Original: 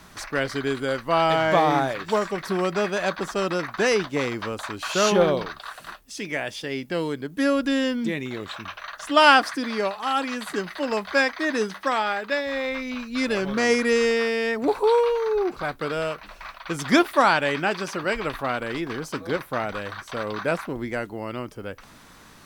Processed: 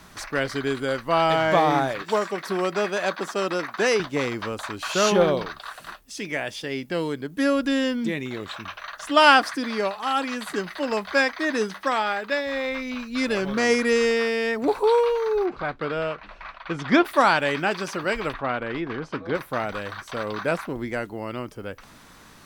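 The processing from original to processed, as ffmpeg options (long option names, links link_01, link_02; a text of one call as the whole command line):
ffmpeg -i in.wav -filter_complex "[0:a]asettb=1/sr,asplit=3[link_01][link_02][link_03];[link_01]atrim=end=2.024[link_04];[link_02]atrim=start=2.02:end=4,asetpts=PTS-STARTPTS,afade=type=in:duration=0.004:curve=qsin,afade=type=out:start_time=1.976:duration=0.004:curve=qsin,highpass=210[link_05];[link_03]atrim=start=3.996[link_06];[link_04][link_05]acrossfade=duration=0.004:curve1=hsin:curve2=qsin[link_07];[link_07][link_06]acrossfade=duration=0.004:curve1=qsin:curve2=hsin,asplit=3[link_08][link_09][link_10];[link_08]afade=type=out:start_time=15.45:duration=0.02[link_11];[link_09]lowpass=3400,afade=type=in:start_time=15.45:duration=0.02,afade=type=out:start_time=17.04:duration=0.02[link_12];[link_10]afade=type=in:start_time=17.04:duration=0.02[link_13];[link_11][link_12][link_13]amix=inputs=3:normalize=0,asplit=3[link_14][link_15][link_16];[link_14]afade=type=out:start_time=18.32:duration=0.02[link_17];[link_15]lowpass=3000,afade=type=in:start_time=18.32:duration=0.02,afade=type=out:start_time=19.34:duration=0.02[link_18];[link_16]afade=type=in:start_time=19.34:duration=0.02[link_19];[link_17][link_18][link_19]amix=inputs=3:normalize=0" out.wav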